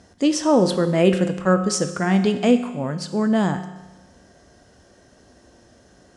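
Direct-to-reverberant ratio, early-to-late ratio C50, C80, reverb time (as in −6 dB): 8.0 dB, 11.0 dB, 12.5 dB, 1.1 s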